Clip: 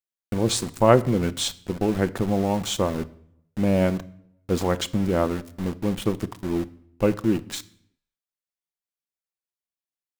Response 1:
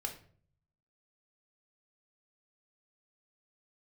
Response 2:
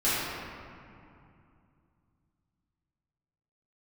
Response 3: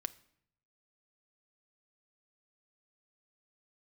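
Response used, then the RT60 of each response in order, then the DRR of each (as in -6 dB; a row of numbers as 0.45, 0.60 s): 3; 0.50, 2.5, 0.70 s; 3.0, -13.0, 11.0 dB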